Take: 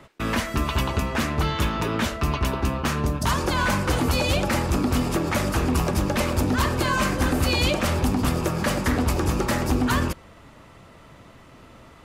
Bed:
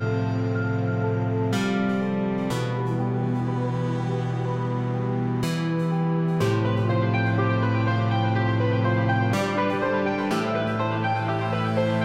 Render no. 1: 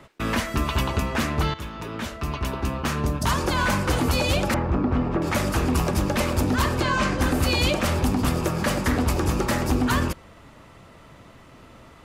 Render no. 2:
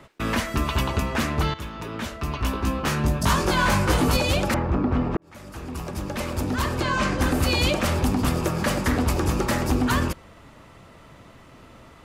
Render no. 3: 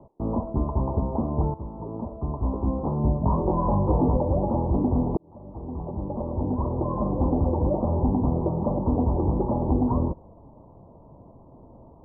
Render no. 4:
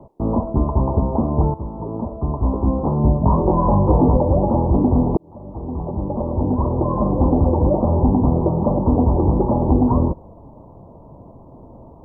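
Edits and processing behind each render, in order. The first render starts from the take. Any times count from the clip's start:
1.54–3.16 fade in, from -12.5 dB; 4.54–5.22 LPF 1600 Hz; 6.8–7.21 LPF 6400 Hz
2.37–4.17 doubler 19 ms -2 dB; 5.17–7.16 fade in
steep low-pass 990 Hz 72 dB/oct
gain +7 dB

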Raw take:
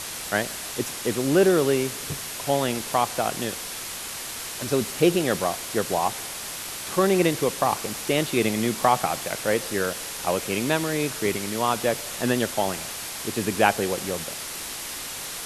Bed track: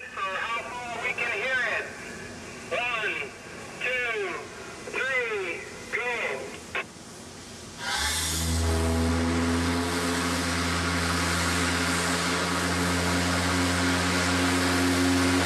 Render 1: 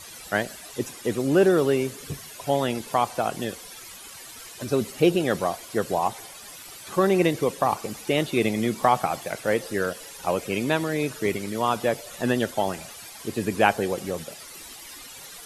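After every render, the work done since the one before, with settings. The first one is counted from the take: denoiser 13 dB, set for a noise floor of -34 dBFS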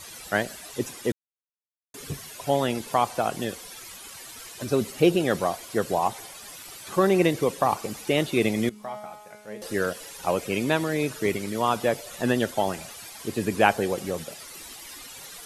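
1.12–1.94 mute; 8.69–9.62 resonator 210 Hz, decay 1.1 s, mix 90%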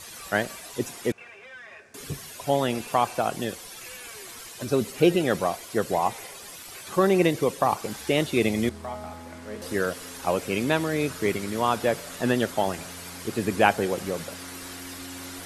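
add bed track -18 dB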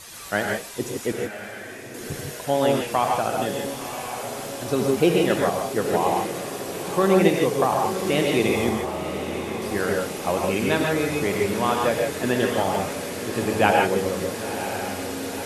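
diffused feedback echo 0.996 s, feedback 65%, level -10 dB; non-linear reverb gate 0.18 s rising, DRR 0.5 dB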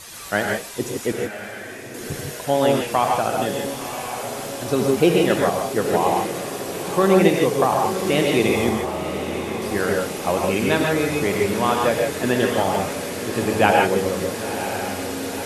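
gain +2.5 dB; limiter -1 dBFS, peak gain reduction 1 dB

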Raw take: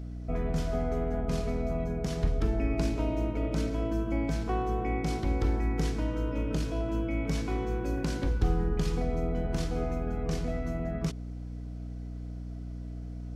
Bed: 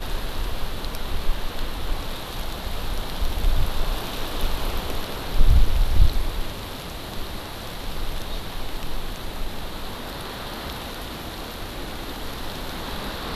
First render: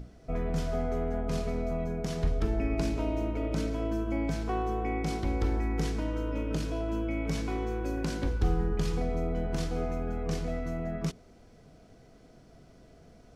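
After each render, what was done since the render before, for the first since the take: notches 60/120/180/240/300/360 Hz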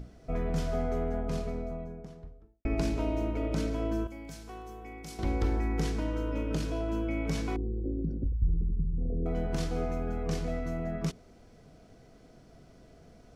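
0.89–2.65 studio fade out; 4.07–5.19 pre-emphasis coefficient 0.8; 7.56–9.26 formant sharpening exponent 3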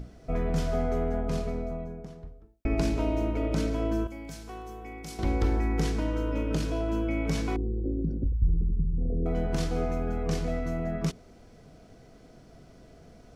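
gain +3 dB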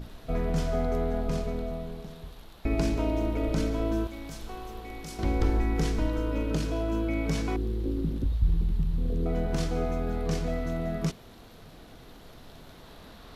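add bed -20 dB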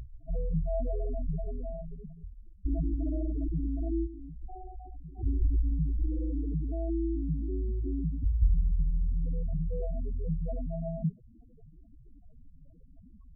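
loudest bins only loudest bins 4

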